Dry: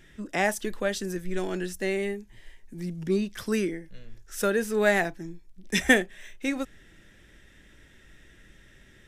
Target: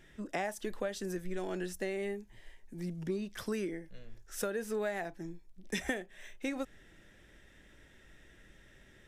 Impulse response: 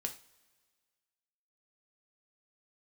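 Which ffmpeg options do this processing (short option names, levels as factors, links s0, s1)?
-af "equalizer=f=680:t=o:w=1.5:g=5,acompressor=threshold=0.0501:ratio=8,volume=0.531"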